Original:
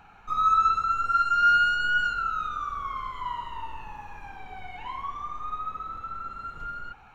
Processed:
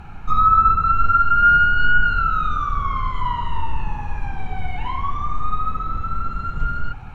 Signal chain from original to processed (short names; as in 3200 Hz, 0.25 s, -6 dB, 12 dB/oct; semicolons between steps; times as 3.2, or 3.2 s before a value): added noise brown -55 dBFS; treble ducked by the level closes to 1700 Hz, closed at -20 dBFS; tone controls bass +13 dB, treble -3 dB; gain +8 dB